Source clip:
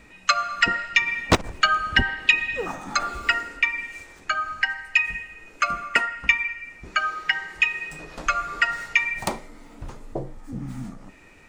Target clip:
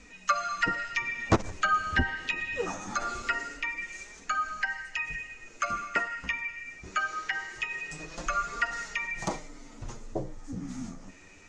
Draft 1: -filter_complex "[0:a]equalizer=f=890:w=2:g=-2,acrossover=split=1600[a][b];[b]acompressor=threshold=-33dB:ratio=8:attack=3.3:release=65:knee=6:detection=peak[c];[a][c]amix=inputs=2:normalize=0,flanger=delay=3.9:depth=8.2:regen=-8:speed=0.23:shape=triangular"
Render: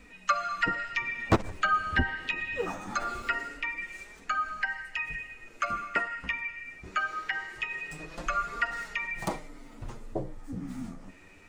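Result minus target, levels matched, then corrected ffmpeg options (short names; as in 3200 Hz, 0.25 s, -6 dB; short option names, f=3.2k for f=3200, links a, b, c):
8000 Hz band -6.0 dB
-filter_complex "[0:a]lowpass=f=6.5k:t=q:w=3.7,equalizer=f=890:w=2:g=-2,acrossover=split=1600[a][b];[b]acompressor=threshold=-33dB:ratio=8:attack=3.3:release=65:knee=6:detection=peak[c];[a][c]amix=inputs=2:normalize=0,flanger=delay=3.9:depth=8.2:regen=-8:speed=0.23:shape=triangular"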